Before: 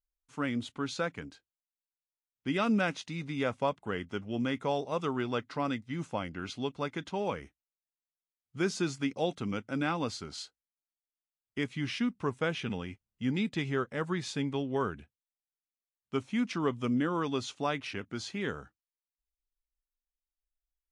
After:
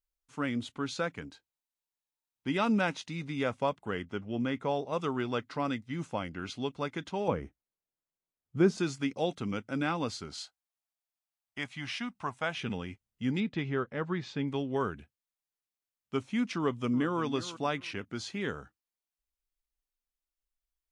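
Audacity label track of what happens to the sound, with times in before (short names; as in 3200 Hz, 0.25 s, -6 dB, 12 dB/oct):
1.250000	2.980000	small resonant body resonances 900/3900 Hz, height 8 dB, ringing for 30 ms
4.020000	4.930000	high shelf 4300 Hz -8 dB
7.280000	8.780000	tilt shelf lows +7.5 dB, about 1300 Hz
10.420000	12.560000	resonant low shelf 550 Hz -6.5 dB, Q 3
13.400000	14.480000	air absorption 180 m
16.580000	17.210000	echo throw 0.35 s, feedback 20%, level -14 dB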